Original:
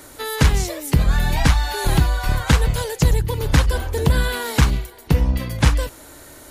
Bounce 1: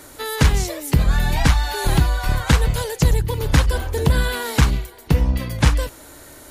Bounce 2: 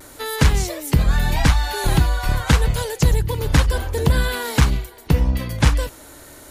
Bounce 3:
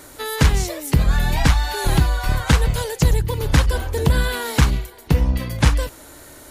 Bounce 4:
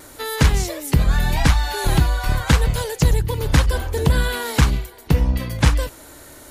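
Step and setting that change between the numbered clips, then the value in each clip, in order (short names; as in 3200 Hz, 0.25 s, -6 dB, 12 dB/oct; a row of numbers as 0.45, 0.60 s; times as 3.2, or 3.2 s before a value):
vibrato, rate: 9.3, 0.3, 3.1, 0.89 Hz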